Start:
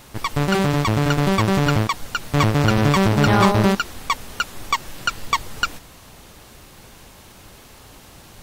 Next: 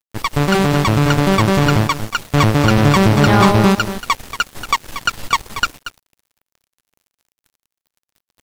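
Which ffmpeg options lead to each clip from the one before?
ffmpeg -i in.wav -af "aecho=1:1:233:0.266,acontrast=53,aeval=exprs='sgn(val(0))*max(abs(val(0))-0.0355,0)':channel_layout=same" out.wav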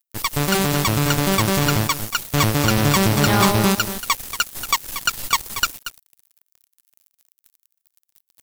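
ffmpeg -i in.wav -af "aemphasis=mode=production:type=75kf,volume=-6dB" out.wav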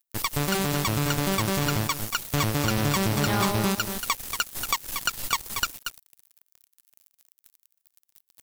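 ffmpeg -i in.wav -af "acompressor=threshold=-27dB:ratio=2" out.wav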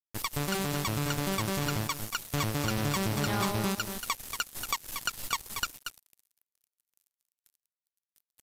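ffmpeg -i in.wav -af "agate=range=-33dB:threshold=-57dB:ratio=3:detection=peak,aresample=32000,aresample=44100,volume=-5.5dB" out.wav

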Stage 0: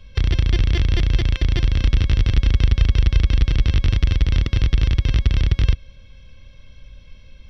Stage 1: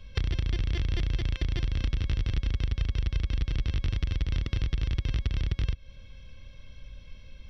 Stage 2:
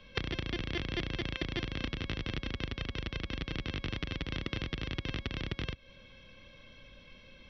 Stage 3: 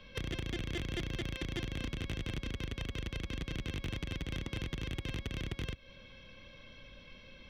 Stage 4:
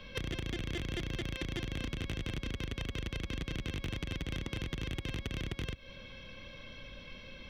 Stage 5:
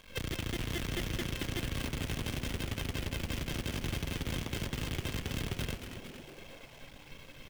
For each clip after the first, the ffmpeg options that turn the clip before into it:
ffmpeg -i in.wav -af "acompressor=threshold=-22dB:ratio=4,volume=-3dB" out.wav
ffmpeg -i in.wav -filter_complex "[0:a]acrossover=split=170 4600:gain=0.126 1 0.2[link_01][link_02][link_03];[link_01][link_02][link_03]amix=inputs=3:normalize=0,volume=3.5dB" out.wav
ffmpeg -i in.wav -af "asoftclip=type=tanh:threshold=-31dB,volume=1dB" out.wav
ffmpeg -i in.wav -af "acompressor=threshold=-39dB:ratio=6,volume=5dB" out.wav
ffmpeg -i in.wav -filter_complex "[0:a]acrusher=bits=7:dc=4:mix=0:aa=0.000001,asplit=9[link_01][link_02][link_03][link_04][link_05][link_06][link_07][link_08][link_09];[link_02]adelay=227,afreqshift=-150,volume=-8.5dB[link_10];[link_03]adelay=454,afreqshift=-300,volume=-12.9dB[link_11];[link_04]adelay=681,afreqshift=-450,volume=-17.4dB[link_12];[link_05]adelay=908,afreqshift=-600,volume=-21.8dB[link_13];[link_06]adelay=1135,afreqshift=-750,volume=-26.2dB[link_14];[link_07]adelay=1362,afreqshift=-900,volume=-30.7dB[link_15];[link_08]adelay=1589,afreqshift=-1050,volume=-35.1dB[link_16];[link_09]adelay=1816,afreqshift=-1200,volume=-39.6dB[link_17];[link_01][link_10][link_11][link_12][link_13][link_14][link_15][link_16][link_17]amix=inputs=9:normalize=0" out.wav

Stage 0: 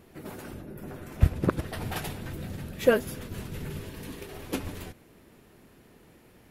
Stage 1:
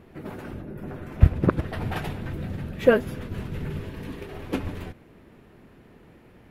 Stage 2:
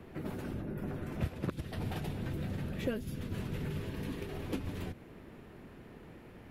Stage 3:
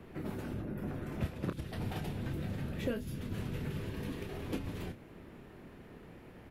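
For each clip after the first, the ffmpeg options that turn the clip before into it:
ffmpeg -i in.wav -af "bass=frequency=250:gain=2,treble=frequency=4000:gain=-13,volume=3.5dB" out.wav
ffmpeg -i in.wav -filter_complex "[0:a]acrossover=split=85|310|690|3100[link_01][link_02][link_03][link_04][link_05];[link_01]acompressor=threshold=-46dB:ratio=4[link_06];[link_02]acompressor=threshold=-37dB:ratio=4[link_07];[link_03]acompressor=threshold=-47dB:ratio=4[link_08];[link_04]acompressor=threshold=-52dB:ratio=4[link_09];[link_05]acompressor=threshold=-51dB:ratio=4[link_10];[link_06][link_07][link_08][link_09][link_10]amix=inputs=5:normalize=0" out.wav
ffmpeg -i in.wav -filter_complex "[0:a]asplit=2[link_01][link_02];[link_02]adelay=29,volume=-8.5dB[link_03];[link_01][link_03]amix=inputs=2:normalize=0,volume=-1dB" out.wav

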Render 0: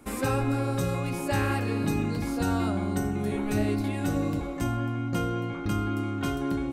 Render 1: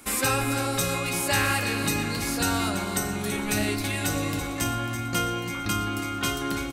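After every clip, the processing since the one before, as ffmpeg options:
ffmpeg -i in.wav -filter_complex "[0:a]tiltshelf=frequency=1300:gain=-8,asplit=2[link_01][link_02];[link_02]aecho=0:1:331|662|993|1324|1655:0.316|0.155|0.0759|0.0372|0.0182[link_03];[link_01][link_03]amix=inputs=2:normalize=0,volume=5.5dB" out.wav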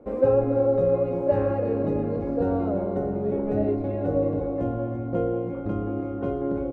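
ffmpeg -i in.wav -af "lowpass=frequency=530:width_type=q:width=4.9" out.wav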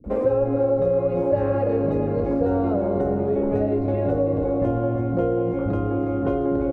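ffmpeg -i in.wav -filter_complex "[0:a]acompressor=threshold=-26dB:ratio=5,acrossover=split=230[link_01][link_02];[link_02]adelay=40[link_03];[link_01][link_03]amix=inputs=2:normalize=0,volume=8.5dB" out.wav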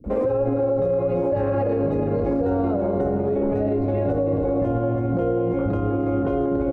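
ffmpeg -i in.wav -af "alimiter=limit=-17.5dB:level=0:latency=1:release=41,volume=3dB" out.wav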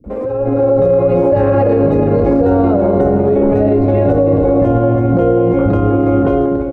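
ffmpeg -i in.wav -af "dynaudnorm=framelen=190:gausssize=5:maxgain=11dB" out.wav

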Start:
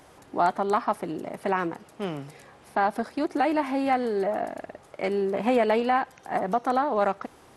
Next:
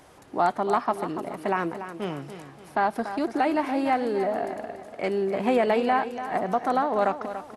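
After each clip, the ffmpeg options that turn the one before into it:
ffmpeg -i in.wav -af "aecho=1:1:288|576|864|1152:0.282|0.113|0.0451|0.018" out.wav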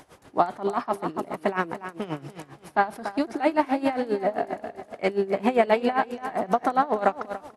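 ffmpeg -i in.wav -af "aeval=exprs='val(0)*pow(10,-18*(0.5-0.5*cos(2*PI*7.5*n/s))/20)':channel_layout=same,volume=5.5dB" out.wav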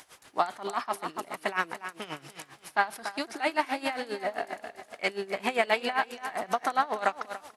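ffmpeg -i in.wav -af "tiltshelf=frequency=970:gain=-9.5,volume=-3.5dB" out.wav

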